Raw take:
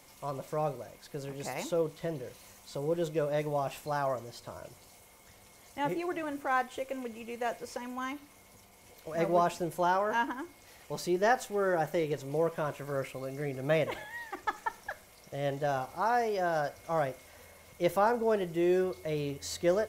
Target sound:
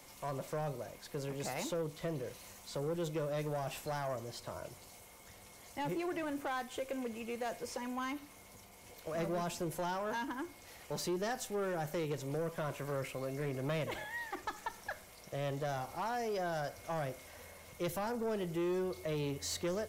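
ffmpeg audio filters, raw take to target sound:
ffmpeg -i in.wav -filter_complex "[0:a]acrossover=split=250|3000[link_01][link_02][link_03];[link_02]acompressor=threshold=-34dB:ratio=6[link_04];[link_01][link_04][link_03]amix=inputs=3:normalize=0,asoftclip=type=tanh:threshold=-31.5dB,volume=1dB" out.wav

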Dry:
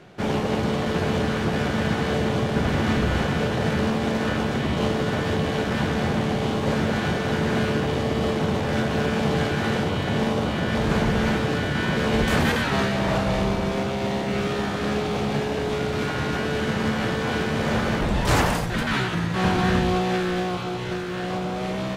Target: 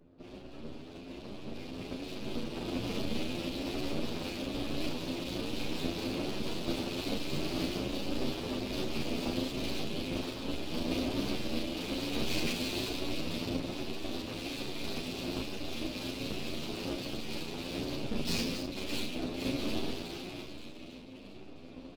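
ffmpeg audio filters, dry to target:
ffmpeg -i in.wav -filter_complex "[0:a]afftfilt=real='re*(1-between(b*sr/4096,330,2400))':imag='im*(1-between(b*sr/4096,330,2400))':win_size=4096:overlap=0.75,dynaudnorm=framelen=620:gausssize=7:maxgain=14.5dB,aeval=exprs='val(0)+0.0158*(sin(2*PI*60*n/s)+sin(2*PI*2*60*n/s)/2+sin(2*PI*3*60*n/s)/3+sin(2*PI*4*60*n/s)/4+sin(2*PI*5*60*n/s)/5)':channel_layout=same,adynamicequalizer=threshold=0.00112:dfrequency=1900:dqfactor=4.1:tfrequency=1900:tqfactor=4.1:attack=5:release=100:ratio=0.375:range=2:mode=boostabove:tftype=bell,acrossover=split=340[link_01][link_02];[link_01]aeval=exprs='abs(val(0))':channel_layout=same[link_03];[link_03][link_02]amix=inputs=2:normalize=0,afftfilt=real='hypot(re,im)*cos(2*PI*random(0))':imag='hypot(re,im)*sin(2*PI*random(1))':win_size=512:overlap=0.75,highpass=220,equalizer=frequency=250:width_type=q:width=4:gain=6,equalizer=frequency=470:width_type=q:width=4:gain=-7,equalizer=frequency=700:width_type=q:width=4:gain=-6,equalizer=frequency=3000:width_type=q:width=4:gain=-7,equalizer=frequency=4600:width_type=q:width=4:gain=4,lowpass=frequency=6100:width=0.5412,lowpass=frequency=6100:width=1.3066,asplit=2[link_04][link_05];[link_05]aecho=0:1:288:0.158[link_06];[link_04][link_06]amix=inputs=2:normalize=0,adynamicsmooth=sensitivity=8:basefreq=2000,asplit=2[link_07][link_08];[link_08]adelay=35,volume=-4.5dB[link_09];[link_07][link_09]amix=inputs=2:normalize=0,aeval=exprs='max(val(0),0)':channel_layout=same,asplit=2[link_10][link_11];[link_11]adelay=10,afreqshift=1.2[link_12];[link_10][link_12]amix=inputs=2:normalize=1,volume=-1.5dB" out.wav

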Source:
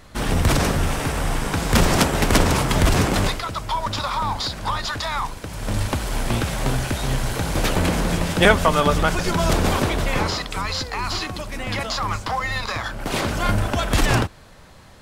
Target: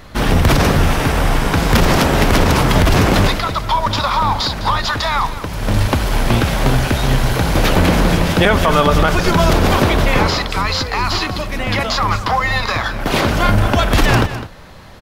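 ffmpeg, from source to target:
ffmpeg -i in.wav -filter_complex "[0:a]equalizer=frequency=8300:width=1.4:gain=-8,asplit=2[link_01][link_02];[link_02]aecho=0:1:206:0.188[link_03];[link_01][link_03]amix=inputs=2:normalize=0,alimiter=level_in=10dB:limit=-1dB:release=50:level=0:latency=1,volume=-2dB" out.wav

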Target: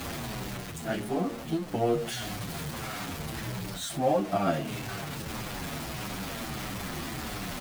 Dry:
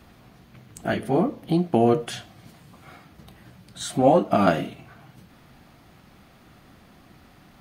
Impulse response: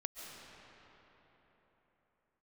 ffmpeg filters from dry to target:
-filter_complex "[0:a]aeval=exprs='val(0)+0.5*0.0562*sgn(val(0))':channel_layout=same,areverse,acompressor=mode=upward:threshold=-23dB:ratio=2.5,areverse,asplit=2[link_01][link_02];[link_02]adelay=26,volume=-11.5dB[link_03];[link_01][link_03]amix=inputs=2:normalize=0,asplit=2[link_04][link_05];[link_05]adelay=8.1,afreqshift=-1.6[link_06];[link_04][link_06]amix=inputs=2:normalize=1,volume=-7dB"

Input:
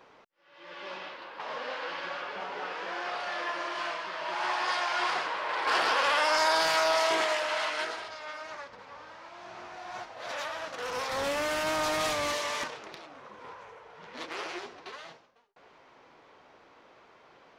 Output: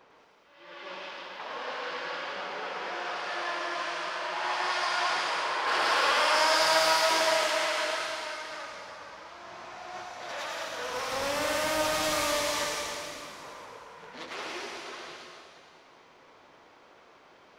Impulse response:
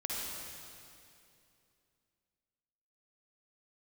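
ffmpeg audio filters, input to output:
-filter_complex "[0:a]asplit=2[link_01][link_02];[link_02]highshelf=frequency=4900:gain=10.5[link_03];[1:a]atrim=start_sample=2205,adelay=106[link_04];[link_03][link_04]afir=irnorm=-1:irlink=0,volume=-4.5dB[link_05];[link_01][link_05]amix=inputs=2:normalize=0,volume=-2dB"

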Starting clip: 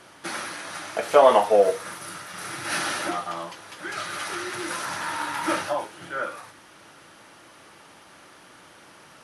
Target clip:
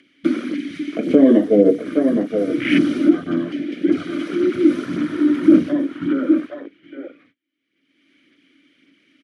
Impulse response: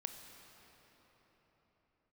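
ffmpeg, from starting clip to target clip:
-filter_complex "[0:a]agate=range=-44dB:threshold=-43dB:ratio=16:detection=peak,asplit=2[link_01][link_02];[link_02]adelay=816.3,volume=-8dB,highshelf=frequency=4000:gain=-18.4[link_03];[link_01][link_03]amix=inputs=2:normalize=0,acrossover=split=510|5200[link_04][link_05][link_06];[link_05]acompressor=threshold=-37dB:ratio=5[link_07];[link_04][link_07][link_06]amix=inputs=3:normalize=0,afwtdn=0.02,aphaser=in_gain=1:out_gain=1:delay=3.4:decay=0.36:speed=1.8:type=sinusoidal,acompressor=mode=upward:threshold=-47dB:ratio=2.5,asplit=3[link_08][link_09][link_10];[link_08]bandpass=frequency=270:width_type=q:width=8,volume=0dB[link_11];[link_09]bandpass=frequency=2290:width_type=q:width=8,volume=-6dB[link_12];[link_10]bandpass=frequency=3010:width_type=q:width=8,volume=-9dB[link_13];[link_11][link_12][link_13]amix=inputs=3:normalize=0,alimiter=level_in=31.5dB:limit=-1dB:release=50:level=0:latency=1,volume=-1dB"

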